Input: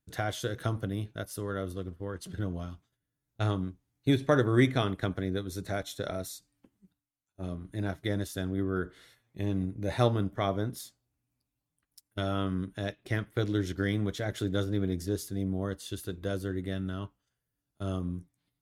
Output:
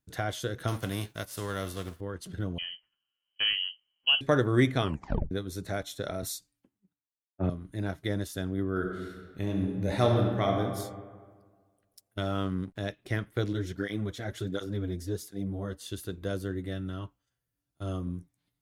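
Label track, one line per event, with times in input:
0.670000	1.990000	formants flattened exponent 0.6
2.580000	4.210000	frequency inversion carrier 3.1 kHz
4.840000	4.840000	tape stop 0.47 s
6.220000	7.500000	three bands expanded up and down depth 100%
8.720000	10.610000	reverb throw, RT60 1.6 s, DRR 1.5 dB
12.200000	12.800000	hysteresis with a dead band play -49.5 dBFS
13.530000	15.810000	cancelling through-zero flanger nulls at 1.4 Hz, depth 7.5 ms
16.540000	18.070000	comb of notches 210 Hz

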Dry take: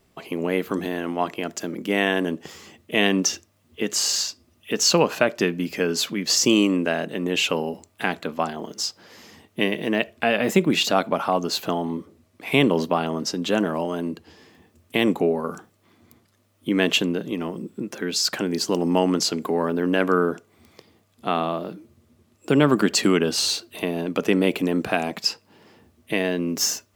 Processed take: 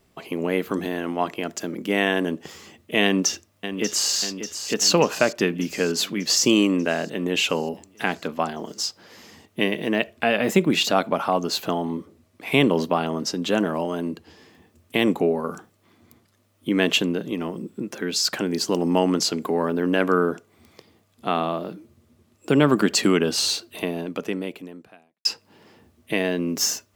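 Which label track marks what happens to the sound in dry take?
3.040000	4.140000	echo throw 590 ms, feedback 65%, level -9.5 dB
23.790000	25.250000	fade out quadratic

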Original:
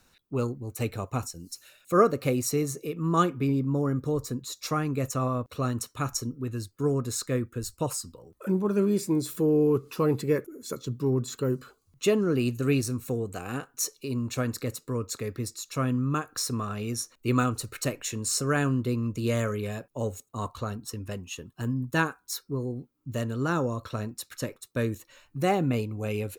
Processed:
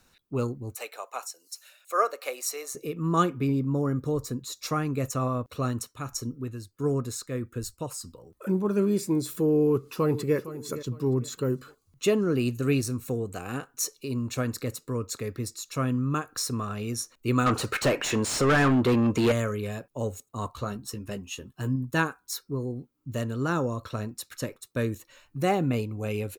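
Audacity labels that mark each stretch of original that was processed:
0.750000	2.750000	high-pass 570 Hz 24 dB/octave
5.700000	8.010000	tremolo 1.6 Hz, depth 49%
9.590000	10.360000	echo throw 460 ms, feedback 30%, level -14 dB
17.460000	19.320000	overdrive pedal drive 27 dB, tone 1.8 kHz, clips at -13 dBFS
20.540000	21.760000	doubling 15 ms -7 dB

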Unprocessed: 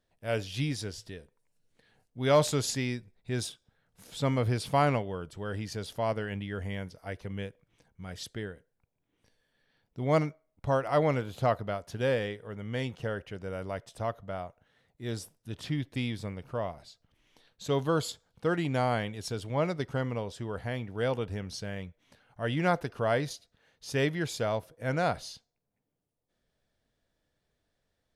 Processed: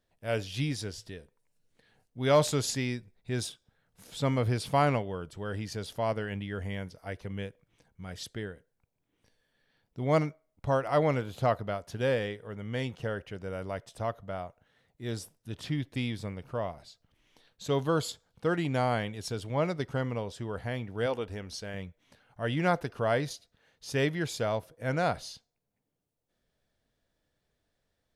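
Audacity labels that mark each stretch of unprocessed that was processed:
21.060000	21.740000	peaking EQ 140 Hz -12 dB

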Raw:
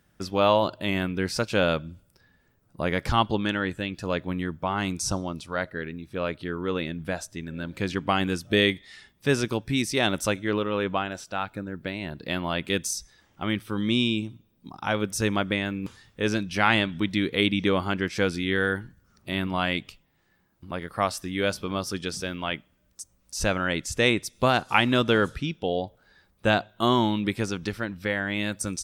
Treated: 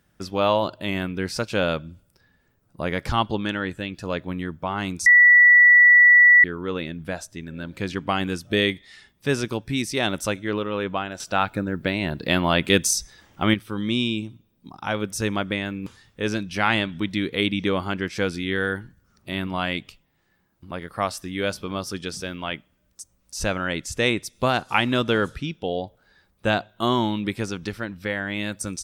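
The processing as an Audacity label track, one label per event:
5.060000	6.440000	bleep 1.95 kHz -9 dBFS
11.200000	13.540000	gain +8 dB

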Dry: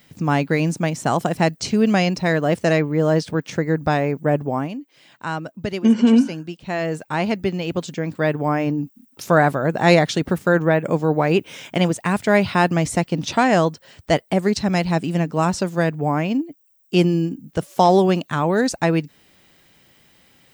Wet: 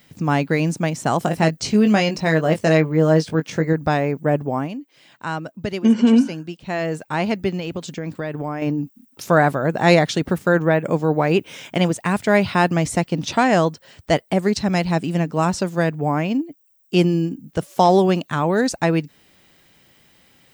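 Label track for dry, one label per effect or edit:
1.210000	3.730000	doubling 19 ms -7 dB
7.590000	8.620000	compression, threshold -22 dBFS

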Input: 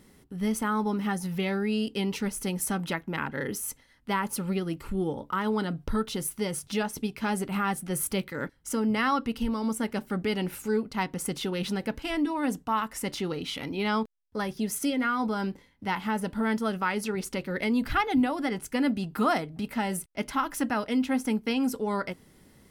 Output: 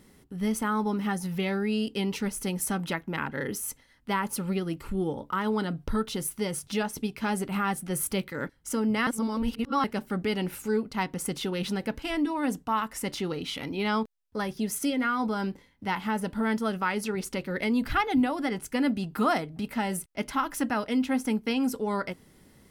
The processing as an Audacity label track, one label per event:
9.070000	9.840000	reverse

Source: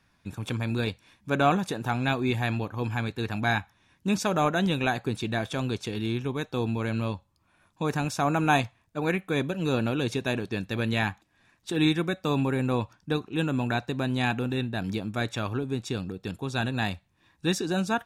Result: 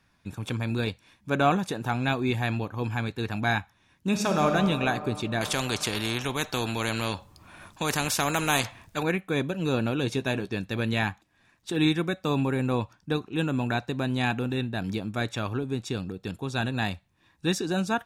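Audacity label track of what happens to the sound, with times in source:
4.070000	4.500000	reverb throw, RT60 2.9 s, DRR 3 dB
5.410000	9.030000	spectrum-flattening compressor 2:1
10.020000	10.540000	doubling 15 ms -11.5 dB

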